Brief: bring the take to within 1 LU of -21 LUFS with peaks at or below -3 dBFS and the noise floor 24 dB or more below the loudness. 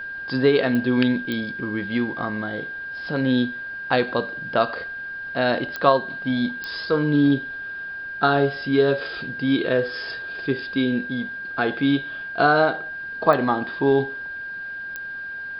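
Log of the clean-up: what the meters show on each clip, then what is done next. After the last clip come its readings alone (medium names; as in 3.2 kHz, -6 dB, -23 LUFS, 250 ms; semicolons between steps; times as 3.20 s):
clicks found 6; steady tone 1.6 kHz; tone level -30 dBFS; loudness -23.0 LUFS; peak level -1.5 dBFS; loudness target -21.0 LUFS
-> de-click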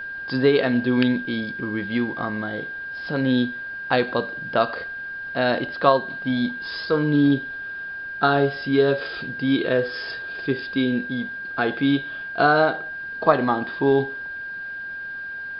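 clicks found 0; steady tone 1.6 kHz; tone level -30 dBFS
-> band-stop 1.6 kHz, Q 30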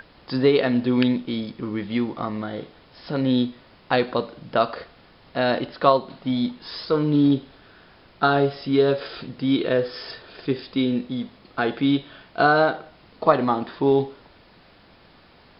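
steady tone not found; loudness -23.0 LUFS; peak level -1.5 dBFS; loudness target -21.0 LUFS
-> trim +2 dB; peak limiter -3 dBFS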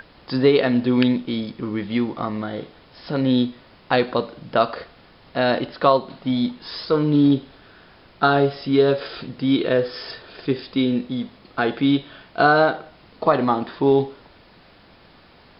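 loudness -21.0 LUFS; peak level -3.0 dBFS; noise floor -51 dBFS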